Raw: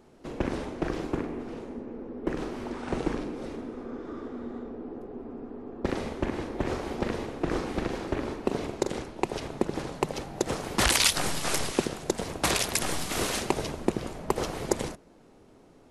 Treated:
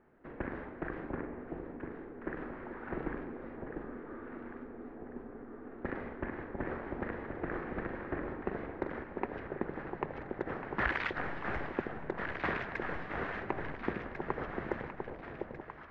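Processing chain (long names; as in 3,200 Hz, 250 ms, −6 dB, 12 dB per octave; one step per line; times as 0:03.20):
transistor ladder low-pass 2,000 Hz, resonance 55%
delay that swaps between a low-pass and a high-pass 698 ms, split 880 Hz, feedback 63%, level −4 dB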